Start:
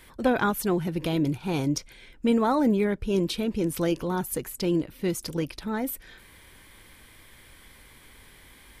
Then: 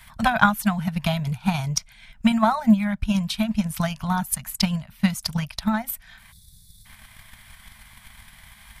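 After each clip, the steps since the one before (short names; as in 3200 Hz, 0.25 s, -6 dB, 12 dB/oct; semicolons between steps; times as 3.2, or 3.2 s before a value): Chebyshev band-stop 220–640 Hz, order 4; transient shaper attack +11 dB, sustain -4 dB; spectral gain 6.32–6.85, 210–3400 Hz -30 dB; gain +4 dB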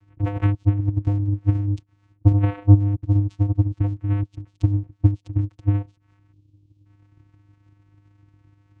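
tilt shelf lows +9 dB; vocoder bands 4, square 101 Hz; gain -3.5 dB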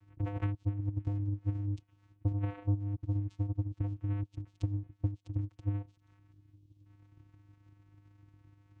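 compressor 2.5:1, threshold -28 dBFS, peak gain reduction 14.5 dB; thin delay 0.73 s, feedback 52%, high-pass 1600 Hz, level -23.5 dB; gain -5 dB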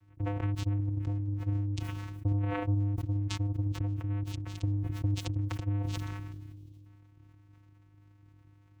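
sustainer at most 22 dB/s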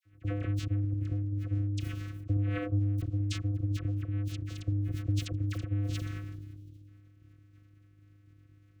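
Butterworth band-stop 890 Hz, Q 1.5; dispersion lows, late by 46 ms, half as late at 1400 Hz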